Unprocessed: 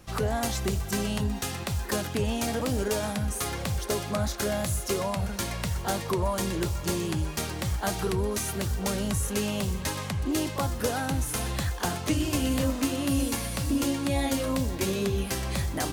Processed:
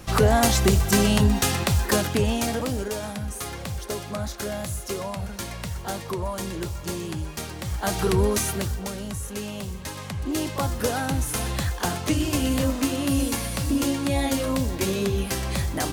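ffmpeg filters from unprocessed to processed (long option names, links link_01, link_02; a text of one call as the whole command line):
ffmpeg -i in.wav -af "volume=26dB,afade=type=out:start_time=1.51:duration=1.38:silence=0.266073,afade=type=in:start_time=7.65:duration=0.58:silence=0.334965,afade=type=out:start_time=8.23:duration=0.67:silence=0.266073,afade=type=in:start_time=9.88:duration=0.8:silence=0.446684" out.wav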